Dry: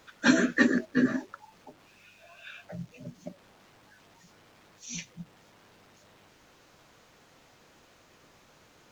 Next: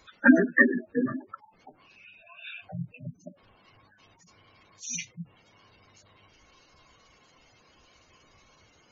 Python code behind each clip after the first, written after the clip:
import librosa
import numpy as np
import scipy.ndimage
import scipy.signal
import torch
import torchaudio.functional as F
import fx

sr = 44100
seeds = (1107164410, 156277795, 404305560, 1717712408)

y = fx.spec_gate(x, sr, threshold_db=-15, keep='strong')
y = fx.noise_reduce_blind(y, sr, reduce_db=10)
y = y * 10.0 ** (7.0 / 20.0)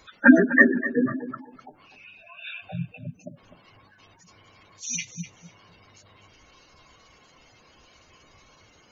y = fx.echo_feedback(x, sr, ms=251, feedback_pct=19, wet_db=-13.5)
y = y * 10.0 ** (4.0 / 20.0)